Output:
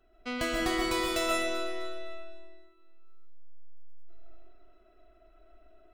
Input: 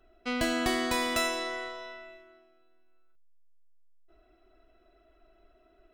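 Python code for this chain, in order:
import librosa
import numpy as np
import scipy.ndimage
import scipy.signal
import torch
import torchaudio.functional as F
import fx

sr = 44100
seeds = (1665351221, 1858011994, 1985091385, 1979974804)

y = fx.echo_alternate(x, sr, ms=127, hz=2300.0, feedback_pct=56, wet_db=-8.0)
y = fx.rev_freeverb(y, sr, rt60_s=0.65, hf_ratio=0.35, predelay_ms=100, drr_db=0.0)
y = y * 10.0 ** (-3.5 / 20.0)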